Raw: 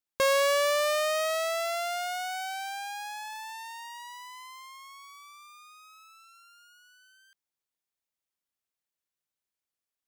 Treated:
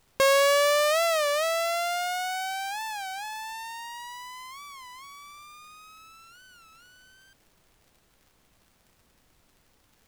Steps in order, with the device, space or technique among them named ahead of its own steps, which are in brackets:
warped LP (wow of a warped record 33 1/3 rpm, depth 160 cents; surface crackle; pink noise bed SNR 35 dB)
level +3.5 dB

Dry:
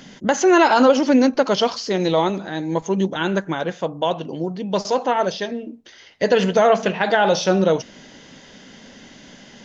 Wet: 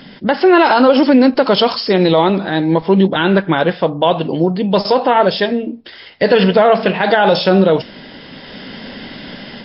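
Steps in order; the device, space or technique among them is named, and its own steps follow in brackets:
low-bitrate web radio (automatic gain control gain up to 8 dB; brickwall limiter −7 dBFS, peak gain reduction 5.5 dB; level +5.5 dB; MP3 32 kbit/s 12,000 Hz)

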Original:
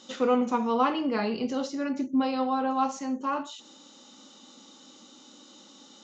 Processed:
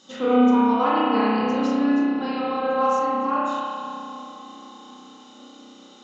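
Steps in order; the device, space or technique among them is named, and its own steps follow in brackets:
dub delay into a spring reverb (feedback echo with a low-pass in the loop 261 ms, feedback 82%, low-pass 1,700 Hz, level −16 dB; spring reverb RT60 2.3 s, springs 32 ms, chirp 75 ms, DRR −8 dB)
level −2.5 dB

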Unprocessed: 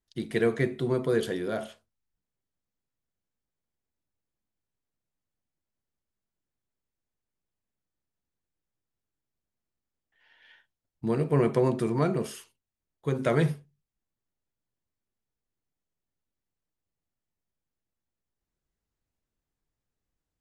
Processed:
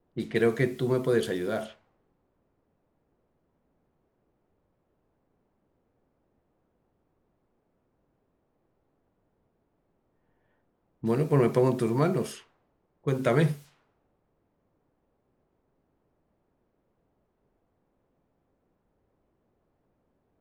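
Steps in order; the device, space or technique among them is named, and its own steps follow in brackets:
cassette deck with a dynamic noise filter (white noise bed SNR 24 dB; low-pass that shuts in the quiet parts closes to 420 Hz, open at −27.5 dBFS)
level +1 dB

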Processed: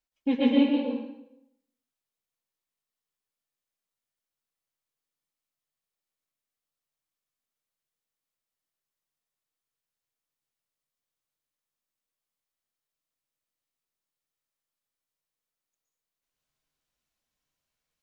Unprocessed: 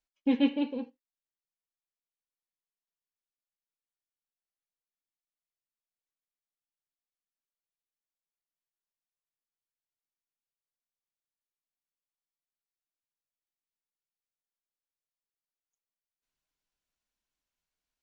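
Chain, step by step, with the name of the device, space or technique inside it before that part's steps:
bathroom (convolution reverb RT60 0.80 s, pre-delay 111 ms, DRR −3.5 dB)

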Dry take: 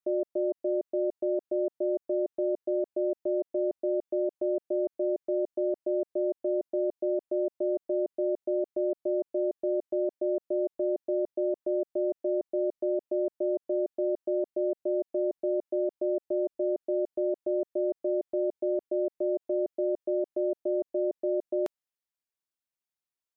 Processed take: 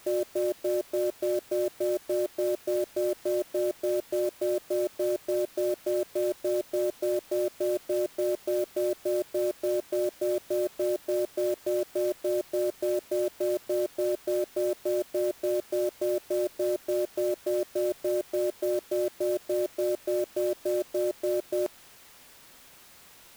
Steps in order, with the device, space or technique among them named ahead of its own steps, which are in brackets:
early CD player with a faulty converter (converter with a step at zero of −42.5 dBFS; converter with an unsteady clock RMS 0.039 ms)

